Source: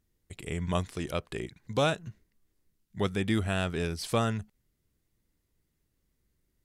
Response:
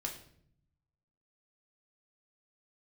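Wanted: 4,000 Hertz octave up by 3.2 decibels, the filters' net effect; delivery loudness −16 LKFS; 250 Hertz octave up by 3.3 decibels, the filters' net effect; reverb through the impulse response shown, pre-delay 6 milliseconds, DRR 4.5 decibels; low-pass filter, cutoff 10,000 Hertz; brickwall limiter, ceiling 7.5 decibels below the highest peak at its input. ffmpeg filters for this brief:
-filter_complex "[0:a]lowpass=10000,equalizer=frequency=250:width_type=o:gain=4.5,equalizer=frequency=4000:width_type=o:gain=4,alimiter=limit=-20dB:level=0:latency=1,asplit=2[link_01][link_02];[1:a]atrim=start_sample=2205,adelay=6[link_03];[link_02][link_03]afir=irnorm=-1:irlink=0,volume=-4.5dB[link_04];[link_01][link_04]amix=inputs=2:normalize=0,volume=15.5dB"

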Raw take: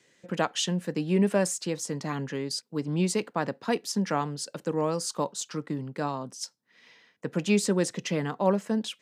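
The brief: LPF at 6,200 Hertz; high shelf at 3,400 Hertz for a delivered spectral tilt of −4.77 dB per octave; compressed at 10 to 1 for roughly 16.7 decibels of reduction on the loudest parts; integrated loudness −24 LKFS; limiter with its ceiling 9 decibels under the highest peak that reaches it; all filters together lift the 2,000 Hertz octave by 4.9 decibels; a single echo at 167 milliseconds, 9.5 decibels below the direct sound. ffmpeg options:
ffmpeg -i in.wav -af "lowpass=6200,equalizer=frequency=2000:width_type=o:gain=8.5,highshelf=frequency=3400:gain=-7,acompressor=threshold=-36dB:ratio=10,alimiter=level_in=7.5dB:limit=-24dB:level=0:latency=1,volume=-7.5dB,aecho=1:1:167:0.335,volume=19dB" out.wav

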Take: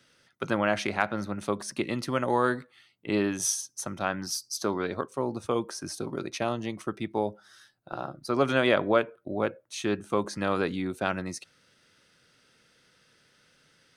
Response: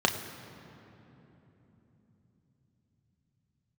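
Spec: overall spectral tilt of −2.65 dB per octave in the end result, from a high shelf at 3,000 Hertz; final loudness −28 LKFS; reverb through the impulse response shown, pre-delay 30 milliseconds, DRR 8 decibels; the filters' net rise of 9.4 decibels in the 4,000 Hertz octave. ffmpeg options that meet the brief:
-filter_complex "[0:a]highshelf=frequency=3000:gain=6.5,equalizer=frequency=4000:width_type=o:gain=7,asplit=2[link_01][link_02];[1:a]atrim=start_sample=2205,adelay=30[link_03];[link_02][link_03]afir=irnorm=-1:irlink=0,volume=-20.5dB[link_04];[link_01][link_04]amix=inputs=2:normalize=0,volume=-2dB"

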